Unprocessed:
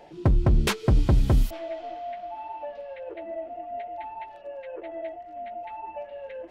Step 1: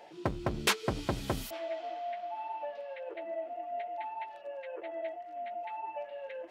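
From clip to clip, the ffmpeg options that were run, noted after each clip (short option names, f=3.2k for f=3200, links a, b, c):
-af "highpass=f=650:p=1"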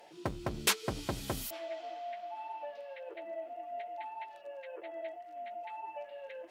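-af "aemphasis=mode=production:type=cd,volume=-3.5dB"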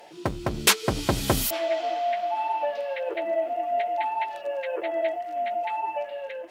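-af "dynaudnorm=f=450:g=5:m=7.5dB,volume=8dB"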